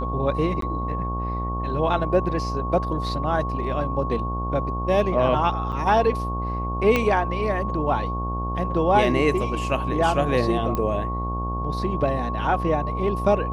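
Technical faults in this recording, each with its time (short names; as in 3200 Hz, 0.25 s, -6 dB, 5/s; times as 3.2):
buzz 60 Hz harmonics 20 -28 dBFS
tone 1100 Hz -29 dBFS
0.61–0.62 gap 13 ms
5.72–5.73 gap 7.5 ms
6.96 pop -8 dBFS
10.75 pop -13 dBFS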